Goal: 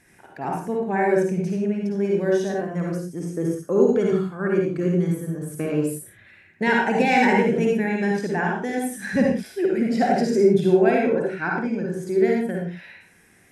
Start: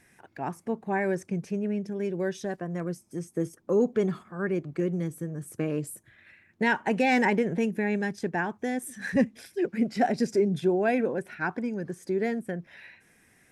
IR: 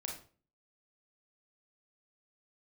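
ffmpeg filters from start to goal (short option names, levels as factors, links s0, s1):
-filter_complex "[0:a]asettb=1/sr,asplit=3[s0][s1][s2];[s0]atrim=end=10.904[s3];[s1]atrim=start=10.9:end=11.85,asetpts=PTS-STARTPTS,afade=t=in:d=0.004:c=qsin,afade=t=out:st=0.946:d=0.004:c=qsin,lowpass=6800[s4];[s2]atrim=start=11.846[s5];[s3][s4]acrossfade=d=0.004:c1=hsin:c2=qsin[s6];[s6][s5]acrossfade=d=0.004:c1=qsin:c2=hsin[s7];[1:a]atrim=start_sample=2205,afade=t=out:st=0.16:d=0.01,atrim=end_sample=7497,asetrate=26901,aresample=44100[s8];[s7][s8]afir=irnorm=-1:irlink=0,volume=1.5"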